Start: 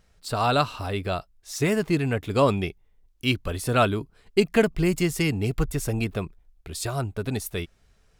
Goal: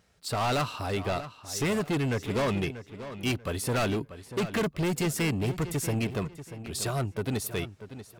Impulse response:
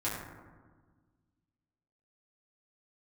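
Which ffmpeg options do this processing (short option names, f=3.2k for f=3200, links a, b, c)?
-filter_complex "[0:a]highpass=95,volume=24.5dB,asoftclip=hard,volume=-24.5dB,asplit=2[a][b];[b]adelay=638,lowpass=f=4.7k:p=1,volume=-12.5dB,asplit=2[c][d];[d]adelay=638,lowpass=f=4.7k:p=1,volume=0.29,asplit=2[e][f];[f]adelay=638,lowpass=f=4.7k:p=1,volume=0.29[g];[a][c][e][g]amix=inputs=4:normalize=0"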